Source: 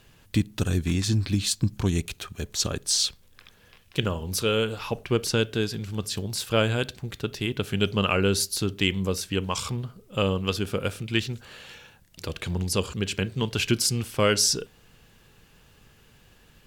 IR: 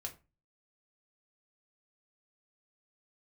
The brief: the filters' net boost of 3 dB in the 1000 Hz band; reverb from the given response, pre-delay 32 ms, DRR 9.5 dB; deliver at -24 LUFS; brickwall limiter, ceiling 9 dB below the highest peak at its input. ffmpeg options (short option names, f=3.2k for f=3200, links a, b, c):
-filter_complex "[0:a]equalizer=f=1k:t=o:g=4,alimiter=limit=-15dB:level=0:latency=1,asplit=2[a][b];[1:a]atrim=start_sample=2205,adelay=32[c];[b][c]afir=irnorm=-1:irlink=0,volume=-7dB[d];[a][d]amix=inputs=2:normalize=0,volume=3.5dB"